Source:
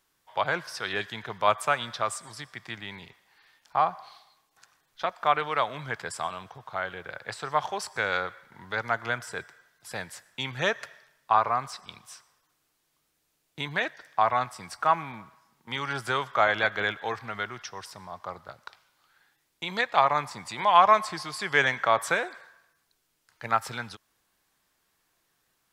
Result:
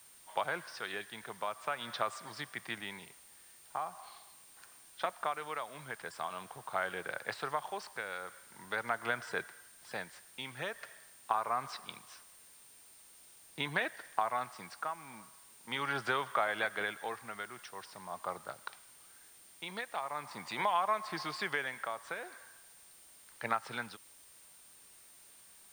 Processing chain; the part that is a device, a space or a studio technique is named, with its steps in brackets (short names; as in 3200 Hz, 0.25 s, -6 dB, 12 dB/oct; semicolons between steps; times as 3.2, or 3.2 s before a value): medium wave at night (BPF 170–4200 Hz; compressor, threshold -28 dBFS, peak gain reduction 15 dB; tremolo 0.43 Hz, depth 61%; whine 9000 Hz -59 dBFS; white noise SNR 21 dB)